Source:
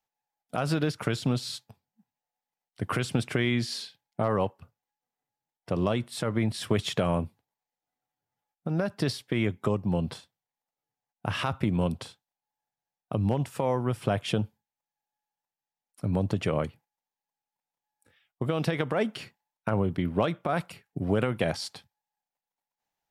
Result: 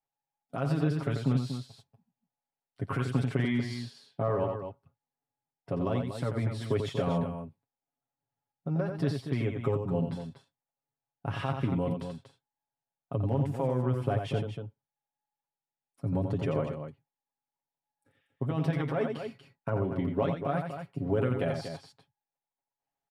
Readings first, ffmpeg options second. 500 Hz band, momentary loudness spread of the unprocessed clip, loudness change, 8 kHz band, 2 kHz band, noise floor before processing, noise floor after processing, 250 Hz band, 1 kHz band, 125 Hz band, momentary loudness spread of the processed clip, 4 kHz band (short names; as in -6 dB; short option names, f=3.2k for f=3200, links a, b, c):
-2.0 dB, 10 LU, -2.0 dB, under -10 dB, -6.5 dB, under -85 dBFS, under -85 dBFS, -2.5 dB, -3.5 dB, 0.0 dB, 13 LU, -10.0 dB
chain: -af "highshelf=f=2k:g=-11.5,aecho=1:1:7.3:0.72,aecho=1:1:87.46|239.1:0.501|0.355,volume=-4.5dB"